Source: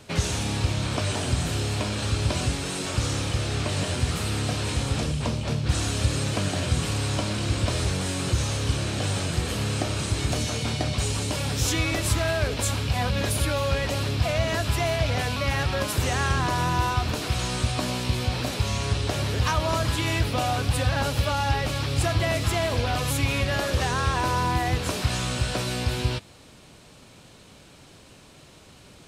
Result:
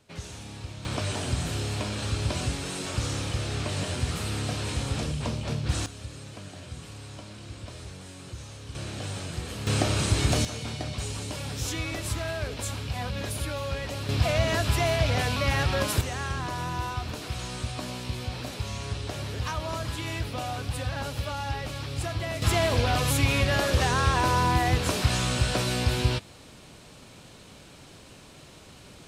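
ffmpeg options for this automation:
ffmpeg -i in.wav -af "asetnsamples=nb_out_samples=441:pad=0,asendcmd='0.85 volume volume -3.5dB;5.86 volume volume -16dB;8.75 volume volume -8dB;9.67 volume volume 2dB;10.45 volume volume -7dB;14.09 volume volume 0dB;16.01 volume volume -7.5dB;22.42 volume volume 1dB',volume=-14dB" out.wav

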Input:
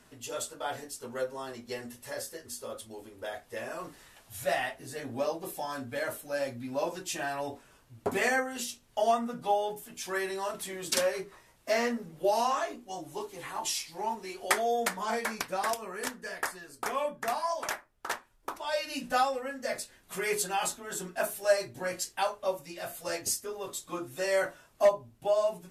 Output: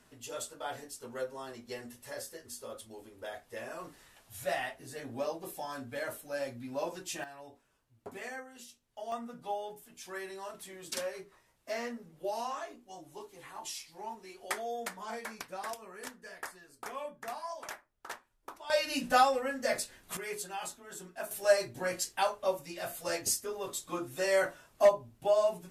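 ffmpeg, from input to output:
ffmpeg -i in.wav -af "asetnsamples=nb_out_samples=441:pad=0,asendcmd='7.24 volume volume -15dB;9.12 volume volume -9dB;18.7 volume volume 2.5dB;20.17 volume volume -9dB;21.31 volume volume 0dB',volume=-4dB" out.wav

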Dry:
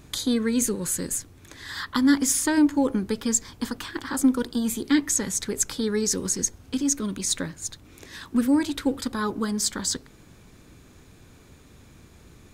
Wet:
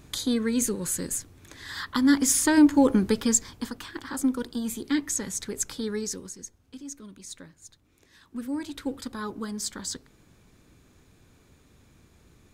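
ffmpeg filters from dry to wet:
ffmpeg -i in.wav -af "volume=13dB,afade=type=in:start_time=1.96:duration=1.07:silence=0.501187,afade=type=out:start_time=3.03:duration=0.66:silence=0.354813,afade=type=out:start_time=5.92:duration=0.41:silence=0.281838,afade=type=in:start_time=8.23:duration=0.65:silence=0.354813" out.wav

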